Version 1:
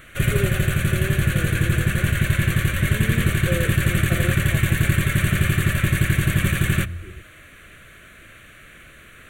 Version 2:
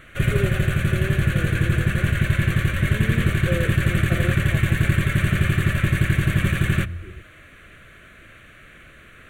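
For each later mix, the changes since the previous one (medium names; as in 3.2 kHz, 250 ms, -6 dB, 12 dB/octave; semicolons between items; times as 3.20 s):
first sound: add treble shelf 5.2 kHz -10 dB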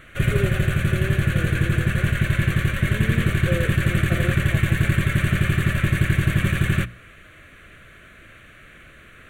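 second sound: muted; reverb: off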